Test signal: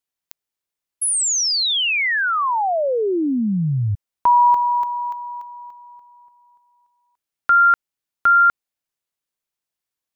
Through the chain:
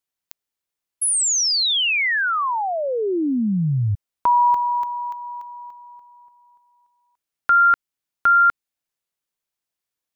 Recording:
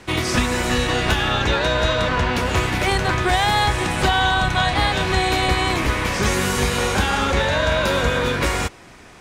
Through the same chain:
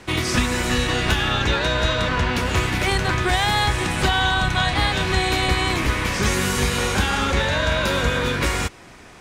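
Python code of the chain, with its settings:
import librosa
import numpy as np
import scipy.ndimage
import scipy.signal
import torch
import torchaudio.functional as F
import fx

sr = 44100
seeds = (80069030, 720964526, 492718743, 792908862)

y = fx.dynamic_eq(x, sr, hz=660.0, q=0.93, threshold_db=-33.0, ratio=4.0, max_db=-4)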